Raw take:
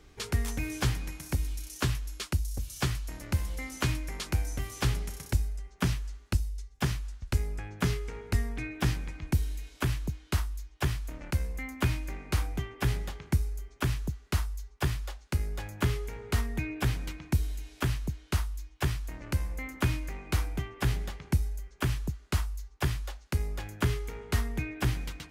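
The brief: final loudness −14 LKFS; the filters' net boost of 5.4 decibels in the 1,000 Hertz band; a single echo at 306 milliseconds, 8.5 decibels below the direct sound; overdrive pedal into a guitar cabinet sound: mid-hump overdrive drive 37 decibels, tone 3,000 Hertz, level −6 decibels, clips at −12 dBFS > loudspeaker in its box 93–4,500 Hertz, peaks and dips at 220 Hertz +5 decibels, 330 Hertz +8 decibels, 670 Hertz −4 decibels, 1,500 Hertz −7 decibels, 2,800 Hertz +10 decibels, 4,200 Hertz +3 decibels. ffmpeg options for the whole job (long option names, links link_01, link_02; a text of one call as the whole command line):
ffmpeg -i in.wav -filter_complex "[0:a]equalizer=frequency=1000:width_type=o:gain=8.5,aecho=1:1:306:0.376,asplit=2[link_01][link_02];[link_02]highpass=frequency=720:poles=1,volume=37dB,asoftclip=type=tanh:threshold=-12dB[link_03];[link_01][link_03]amix=inputs=2:normalize=0,lowpass=frequency=3000:poles=1,volume=-6dB,highpass=93,equalizer=frequency=220:width_type=q:width=4:gain=5,equalizer=frequency=330:width_type=q:width=4:gain=8,equalizer=frequency=670:width_type=q:width=4:gain=-4,equalizer=frequency=1500:width_type=q:width=4:gain=-7,equalizer=frequency=2800:width_type=q:width=4:gain=10,equalizer=frequency=4200:width_type=q:width=4:gain=3,lowpass=frequency=4500:width=0.5412,lowpass=frequency=4500:width=1.3066,volume=6dB" out.wav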